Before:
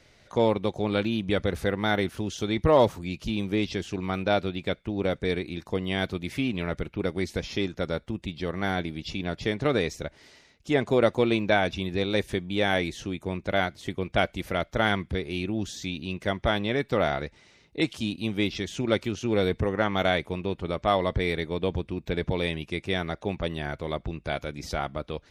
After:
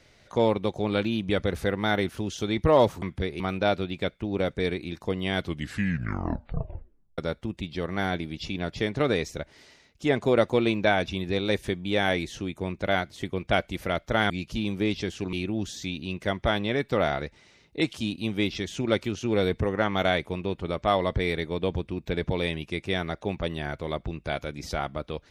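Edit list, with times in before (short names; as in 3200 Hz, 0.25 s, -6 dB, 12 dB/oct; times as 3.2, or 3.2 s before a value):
3.02–4.05 swap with 14.95–15.33
6 tape stop 1.83 s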